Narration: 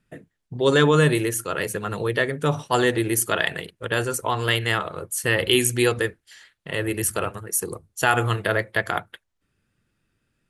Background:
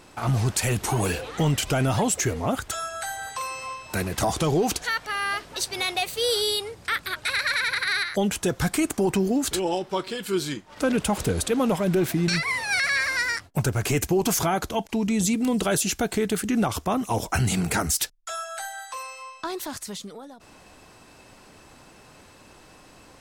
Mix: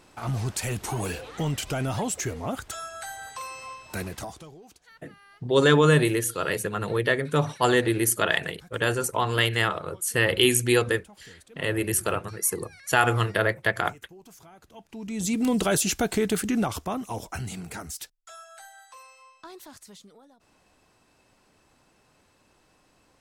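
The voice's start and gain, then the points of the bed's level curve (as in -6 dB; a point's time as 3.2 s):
4.90 s, -1.0 dB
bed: 4.08 s -5.5 dB
4.58 s -27.5 dB
14.57 s -27.5 dB
15.4 s 0 dB
16.39 s 0 dB
17.63 s -13 dB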